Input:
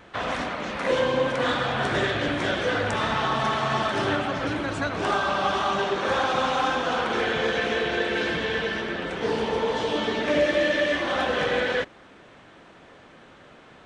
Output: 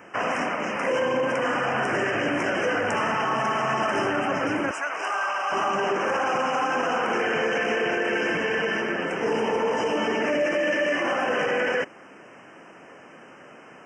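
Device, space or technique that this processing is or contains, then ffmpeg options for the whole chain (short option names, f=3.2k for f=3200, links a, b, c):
PA system with an anti-feedback notch: -filter_complex "[0:a]highpass=180,asuperstop=centerf=3900:order=20:qfactor=2.1,alimiter=limit=-20dB:level=0:latency=1:release=17,asettb=1/sr,asplit=3[a][b][c];[a]atrim=end=4.714[d];[b]atrim=start=4.71:end=5.52,asetpts=PTS-STARTPTS,afade=t=in:d=0.004:c=qsin,afade=t=out:st=0.806:d=0.004:c=qsin,highpass=810[e];[c]atrim=start=5.516[f];[d][e]acrossfade=d=0.004:c1=hsin:c2=qsin[g];[g][f]acrossfade=d=0.004:c1=qsin:c2=hsin,volume=3.5dB"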